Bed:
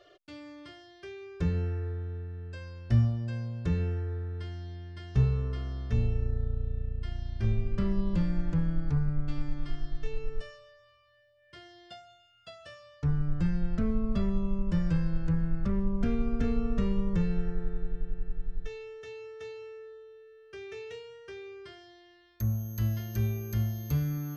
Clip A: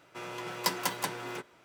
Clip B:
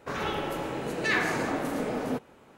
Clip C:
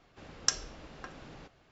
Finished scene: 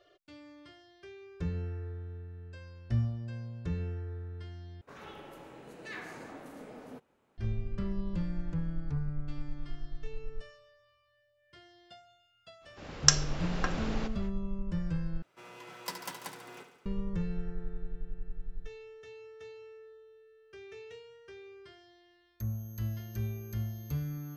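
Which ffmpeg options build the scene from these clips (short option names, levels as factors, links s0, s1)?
-filter_complex "[0:a]volume=0.501[s0];[3:a]dynaudnorm=f=170:g=3:m=3.98[s1];[1:a]aecho=1:1:71|142|213|284|355|426|497:0.355|0.206|0.119|0.0692|0.0402|0.0233|0.0135[s2];[s0]asplit=3[s3][s4][s5];[s3]atrim=end=4.814[s6];[2:a]atrim=end=2.57,asetpts=PTS-STARTPTS,volume=0.141[s7];[s4]atrim=start=7.376:end=15.224[s8];[s2]atrim=end=1.64,asetpts=PTS-STARTPTS,volume=0.316[s9];[s5]atrim=start=16.856[s10];[s1]atrim=end=1.71,asetpts=PTS-STARTPTS,afade=t=in:d=0.05,afade=t=out:st=1.66:d=0.05,adelay=12600[s11];[s6][s7]acrossfade=d=0.004:c1=hsin:c2=hsin[s12];[s12][s8]acrossfade=d=0.004:c1=hsin:c2=hsin[s13];[s13][s9]acrossfade=d=0.004:c1=hsin:c2=hsin[s14];[s14][s10]acrossfade=d=0.004:c1=hsin:c2=hsin[s15];[s15][s11]amix=inputs=2:normalize=0"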